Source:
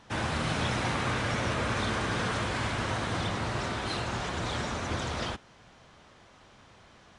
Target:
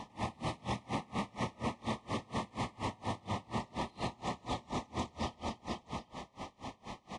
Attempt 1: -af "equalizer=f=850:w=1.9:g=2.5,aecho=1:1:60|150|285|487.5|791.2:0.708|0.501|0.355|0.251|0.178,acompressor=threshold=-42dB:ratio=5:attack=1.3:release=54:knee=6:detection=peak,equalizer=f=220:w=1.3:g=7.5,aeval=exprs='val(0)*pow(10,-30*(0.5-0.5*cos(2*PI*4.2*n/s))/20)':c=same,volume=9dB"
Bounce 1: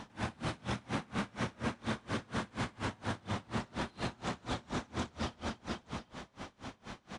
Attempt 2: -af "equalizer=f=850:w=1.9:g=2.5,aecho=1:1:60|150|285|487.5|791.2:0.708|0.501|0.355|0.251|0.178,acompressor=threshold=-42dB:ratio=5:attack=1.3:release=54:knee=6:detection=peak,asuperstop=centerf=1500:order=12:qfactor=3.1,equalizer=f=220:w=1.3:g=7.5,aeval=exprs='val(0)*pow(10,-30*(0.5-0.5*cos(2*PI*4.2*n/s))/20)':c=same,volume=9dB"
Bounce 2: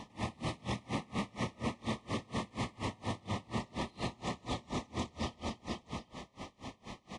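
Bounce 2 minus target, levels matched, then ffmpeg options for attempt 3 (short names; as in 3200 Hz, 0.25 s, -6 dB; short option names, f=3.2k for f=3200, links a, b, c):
1000 Hz band -3.0 dB
-af "equalizer=f=850:w=1.9:g=8.5,aecho=1:1:60|150|285|487.5|791.2:0.708|0.501|0.355|0.251|0.178,acompressor=threshold=-42dB:ratio=5:attack=1.3:release=54:knee=6:detection=peak,asuperstop=centerf=1500:order=12:qfactor=3.1,equalizer=f=220:w=1.3:g=7.5,aeval=exprs='val(0)*pow(10,-30*(0.5-0.5*cos(2*PI*4.2*n/s))/20)':c=same,volume=9dB"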